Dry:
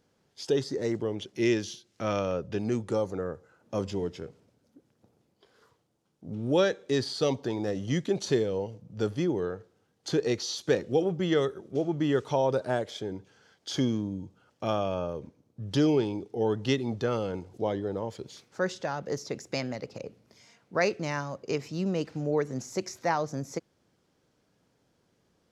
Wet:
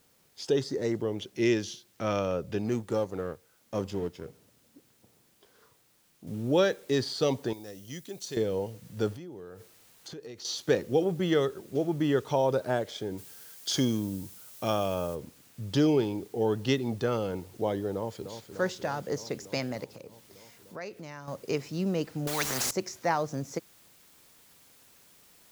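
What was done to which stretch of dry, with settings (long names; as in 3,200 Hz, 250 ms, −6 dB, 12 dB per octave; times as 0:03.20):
0:02.66–0:04.25: mu-law and A-law mismatch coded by A
0:06.27: noise floor change −67 dB −59 dB
0:07.53–0:08.37: first-order pre-emphasis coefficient 0.8
0:09.15–0:10.45: downward compressor, threshold −41 dBFS
0:13.17–0:15.14: high-shelf EQ 4,200 Hz → 5,700 Hz +11.5 dB
0:17.92–0:18.45: delay throw 300 ms, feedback 80%, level −9 dB
0:19.84–0:21.28: downward compressor 2 to 1, threshold −47 dBFS
0:22.27–0:22.71: every bin compressed towards the loudest bin 4 to 1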